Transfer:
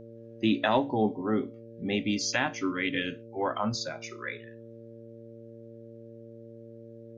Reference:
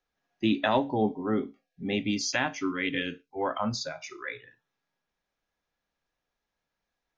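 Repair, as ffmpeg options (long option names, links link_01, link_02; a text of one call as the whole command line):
ffmpeg -i in.wav -af "bandreject=frequency=114.7:width_type=h:width=4,bandreject=frequency=229.4:width_type=h:width=4,bandreject=frequency=344.1:width_type=h:width=4,bandreject=frequency=458.8:width_type=h:width=4,bandreject=frequency=573.5:width_type=h:width=4" out.wav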